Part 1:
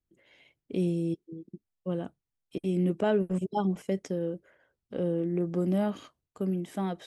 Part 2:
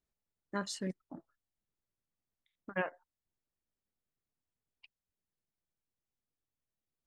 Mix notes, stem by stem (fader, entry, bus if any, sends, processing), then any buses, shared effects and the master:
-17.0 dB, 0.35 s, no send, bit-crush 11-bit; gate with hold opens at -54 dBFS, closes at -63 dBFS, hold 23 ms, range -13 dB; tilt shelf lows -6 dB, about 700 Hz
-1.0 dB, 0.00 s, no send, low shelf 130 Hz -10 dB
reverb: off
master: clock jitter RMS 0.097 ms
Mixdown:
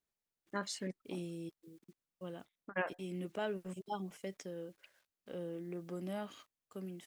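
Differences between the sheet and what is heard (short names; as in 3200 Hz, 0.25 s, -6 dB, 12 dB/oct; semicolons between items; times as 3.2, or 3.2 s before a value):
stem 1 -17.0 dB -> -10.5 dB; master: missing clock jitter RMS 0.097 ms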